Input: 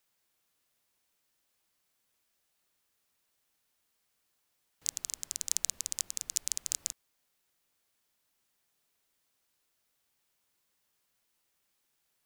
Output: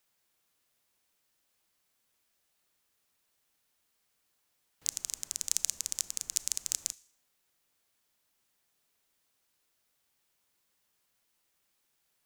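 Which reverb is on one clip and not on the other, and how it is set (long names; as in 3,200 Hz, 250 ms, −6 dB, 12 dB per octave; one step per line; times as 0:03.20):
four-comb reverb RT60 0.56 s, combs from 26 ms, DRR 19.5 dB
level +1 dB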